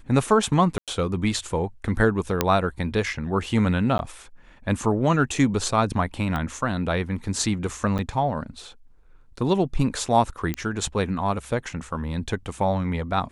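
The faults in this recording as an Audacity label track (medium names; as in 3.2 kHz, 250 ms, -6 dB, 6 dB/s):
0.780000	0.880000	dropout 97 ms
2.410000	2.410000	pop -4 dBFS
3.980000	3.990000	dropout
6.360000	6.360000	pop -16 dBFS
7.980000	7.990000	dropout 8.6 ms
10.540000	10.540000	pop -12 dBFS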